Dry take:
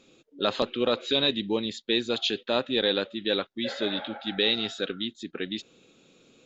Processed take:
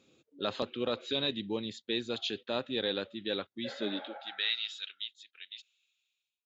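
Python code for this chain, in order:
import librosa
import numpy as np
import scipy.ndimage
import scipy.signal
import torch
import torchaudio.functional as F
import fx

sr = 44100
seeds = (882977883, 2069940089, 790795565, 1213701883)

y = fx.fade_out_tail(x, sr, length_s=1.75)
y = fx.filter_sweep_highpass(y, sr, from_hz=87.0, to_hz=2700.0, start_s=3.63, end_s=4.64, q=1.8)
y = y * 10.0 ** (-8.0 / 20.0)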